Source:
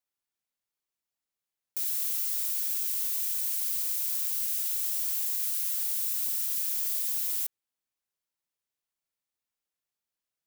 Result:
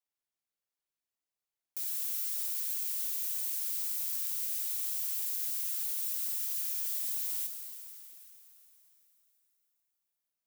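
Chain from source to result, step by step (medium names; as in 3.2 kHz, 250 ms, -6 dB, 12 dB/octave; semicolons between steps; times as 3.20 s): peaking EQ 670 Hz +2.5 dB 0.31 oct; plate-style reverb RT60 4.1 s, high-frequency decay 0.85×, DRR 4.5 dB; trim -5.5 dB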